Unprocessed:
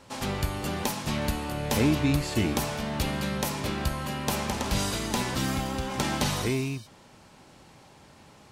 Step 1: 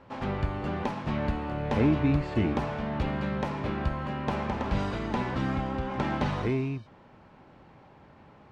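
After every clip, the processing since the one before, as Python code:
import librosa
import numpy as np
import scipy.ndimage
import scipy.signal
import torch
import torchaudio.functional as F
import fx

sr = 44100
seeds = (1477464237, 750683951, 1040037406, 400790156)

y = scipy.signal.sosfilt(scipy.signal.butter(2, 1900.0, 'lowpass', fs=sr, output='sos'), x)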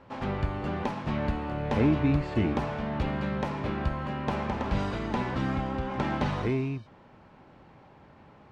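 y = x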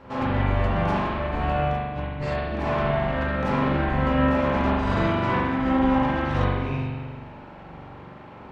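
y = fx.over_compress(x, sr, threshold_db=-32.0, ratio=-0.5)
y = fx.rev_spring(y, sr, rt60_s=1.5, pass_ms=(42,), chirp_ms=30, drr_db=-6.0)
y = F.gain(torch.from_numpy(y), 2.0).numpy()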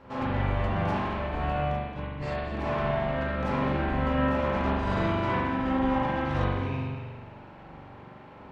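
y = x + 10.0 ** (-11.0 / 20.0) * np.pad(x, (int(220 * sr / 1000.0), 0))[:len(x)]
y = F.gain(torch.from_numpy(y), -4.5).numpy()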